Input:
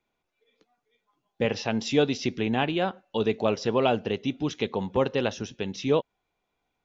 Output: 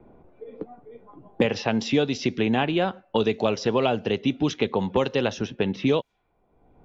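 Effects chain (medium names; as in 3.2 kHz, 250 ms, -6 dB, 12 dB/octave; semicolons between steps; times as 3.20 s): level-controlled noise filter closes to 550 Hz, open at -22 dBFS; three bands compressed up and down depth 100%; trim +2 dB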